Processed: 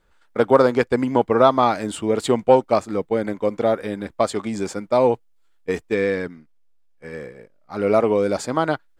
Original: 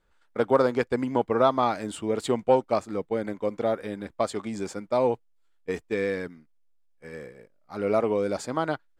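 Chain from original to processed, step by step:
0:05.95–0:07.77: high-shelf EQ 7,900 Hz −7.5 dB
level +6.5 dB

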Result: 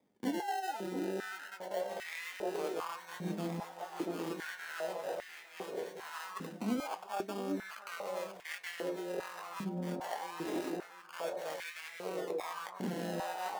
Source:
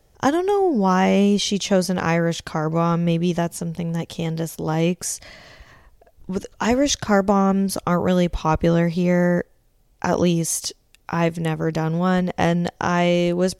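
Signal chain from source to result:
sample-and-hold swept by an LFO 31×, swing 60% 0.24 Hz
flanger 0.93 Hz, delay 4.2 ms, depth 5.6 ms, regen −76%
on a send: delay that swaps between a low-pass and a high-pass 687 ms, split 920 Hz, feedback 67%, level −2.5 dB
on the sum: flanger 0.15 Hz, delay 9.8 ms, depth 2 ms, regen +65%
reversed playback
downward compressor, threshold −31 dBFS, peak gain reduction 12.5 dB
reversed playback
high-pass on a step sequencer 2.5 Hz 230–2,000 Hz
level −6 dB

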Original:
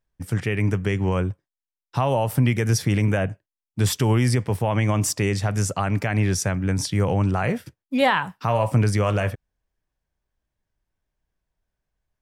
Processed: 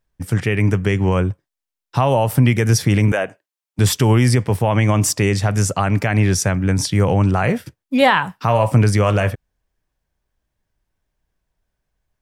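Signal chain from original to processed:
0:03.12–0:03.79: high-pass filter 400 Hz 12 dB per octave
level +5.5 dB

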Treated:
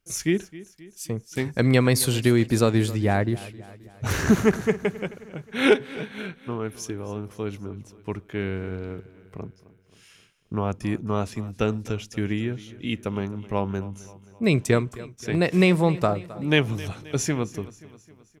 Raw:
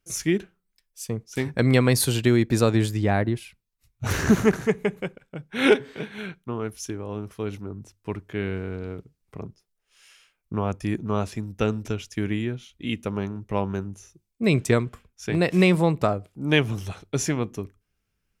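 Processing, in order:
repeating echo 265 ms, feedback 54%, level −18.5 dB

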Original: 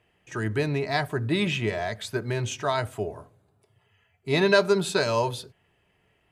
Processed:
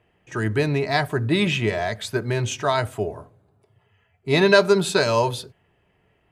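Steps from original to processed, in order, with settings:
one half of a high-frequency compander decoder only
level +4.5 dB

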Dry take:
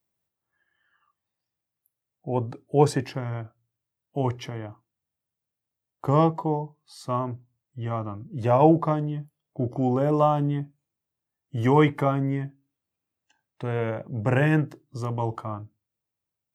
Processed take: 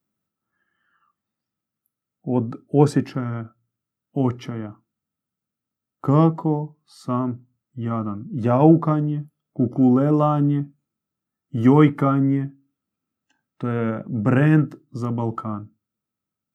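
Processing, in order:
hollow resonant body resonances 220/1,300 Hz, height 14 dB, ringing for 25 ms
level −2 dB

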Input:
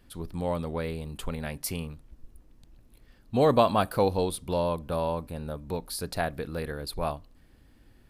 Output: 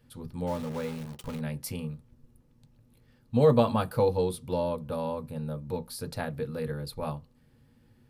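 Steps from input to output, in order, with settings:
0:00.47–0:01.40: centre clipping without the shift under −34.5 dBFS
on a send: convolution reverb RT60 0.15 s, pre-delay 3 ms, DRR 5 dB
on the sum: level −5.5 dB

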